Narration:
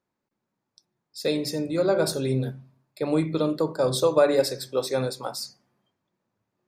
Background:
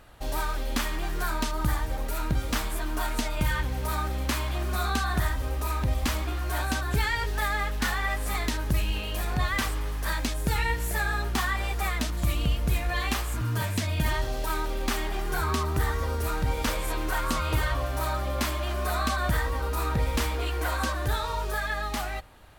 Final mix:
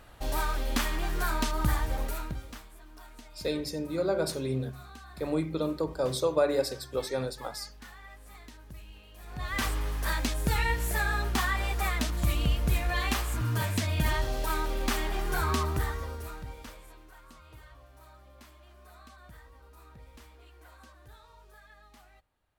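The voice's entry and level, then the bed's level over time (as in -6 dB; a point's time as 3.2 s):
2.20 s, -6.0 dB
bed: 2.03 s -0.5 dB
2.68 s -21 dB
9.15 s -21 dB
9.64 s -1 dB
15.63 s -1 dB
17.12 s -25.5 dB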